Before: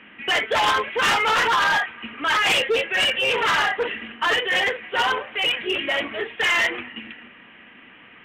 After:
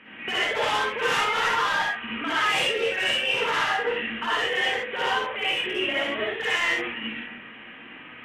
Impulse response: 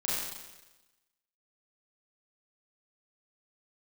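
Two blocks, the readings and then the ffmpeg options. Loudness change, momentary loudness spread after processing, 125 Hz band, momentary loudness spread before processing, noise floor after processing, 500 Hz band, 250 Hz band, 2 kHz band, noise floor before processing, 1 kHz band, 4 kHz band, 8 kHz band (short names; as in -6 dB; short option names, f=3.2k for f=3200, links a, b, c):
-3.5 dB, 11 LU, -2.5 dB, 9 LU, -44 dBFS, -2.5 dB, -0.5 dB, -3.5 dB, -48 dBFS, -4.0 dB, -3.5 dB, -4.5 dB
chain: -filter_complex "[0:a]acompressor=threshold=-27dB:ratio=6[a];[1:a]atrim=start_sample=2205,atrim=end_sample=3969,asetrate=26901,aresample=44100[b];[a][b]afir=irnorm=-1:irlink=0,volume=-5dB"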